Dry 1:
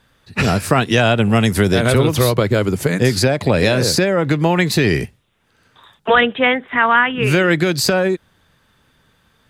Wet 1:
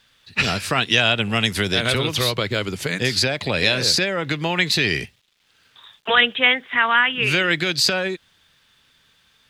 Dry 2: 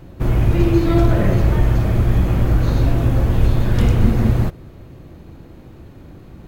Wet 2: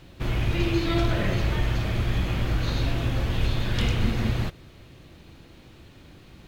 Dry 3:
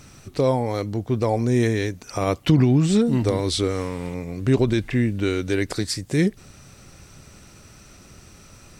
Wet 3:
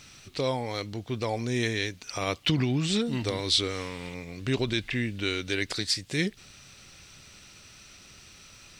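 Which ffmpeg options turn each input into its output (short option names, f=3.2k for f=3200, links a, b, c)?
-af "acrusher=bits=9:mix=0:aa=0.000001,equalizer=f=3.4k:t=o:w=2.2:g=14.5,volume=-10dB"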